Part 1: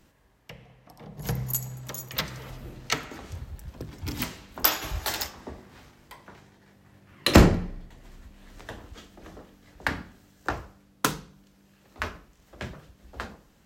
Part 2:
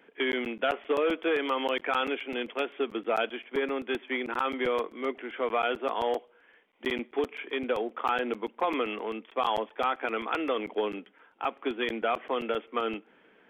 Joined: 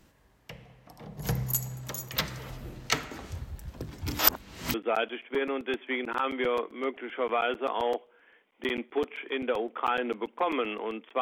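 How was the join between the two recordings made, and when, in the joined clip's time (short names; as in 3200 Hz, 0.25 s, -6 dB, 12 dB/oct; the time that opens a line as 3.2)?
part 1
4.19–4.74 reverse
4.74 switch to part 2 from 2.95 s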